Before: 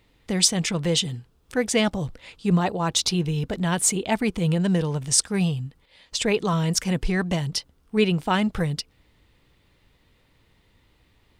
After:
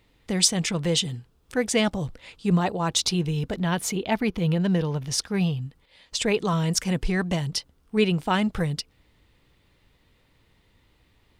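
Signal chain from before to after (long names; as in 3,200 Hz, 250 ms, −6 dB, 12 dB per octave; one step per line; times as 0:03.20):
0:03.56–0:05.62: parametric band 8,200 Hz −14.5 dB 0.48 octaves
level −1 dB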